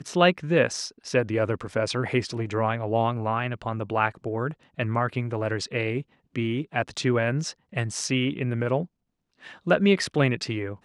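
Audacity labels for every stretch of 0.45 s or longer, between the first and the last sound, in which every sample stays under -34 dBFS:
8.850000	9.470000	silence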